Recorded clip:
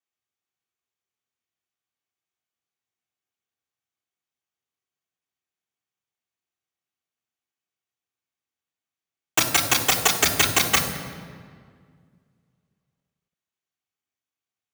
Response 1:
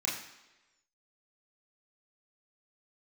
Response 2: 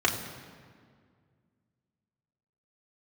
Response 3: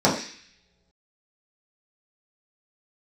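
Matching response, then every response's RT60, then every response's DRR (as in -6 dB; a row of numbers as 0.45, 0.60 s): 2; 1.1 s, 2.0 s, not exponential; -5.5, -2.0, -7.0 dB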